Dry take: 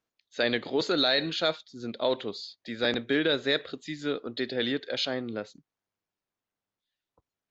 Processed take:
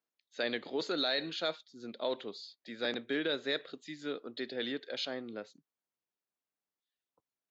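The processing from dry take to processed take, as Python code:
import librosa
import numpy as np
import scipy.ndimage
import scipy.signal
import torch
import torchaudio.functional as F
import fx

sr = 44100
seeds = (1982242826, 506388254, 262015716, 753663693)

y = scipy.signal.sosfilt(scipy.signal.butter(2, 180.0, 'highpass', fs=sr, output='sos'), x)
y = y * 10.0 ** (-7.5 / 20.0)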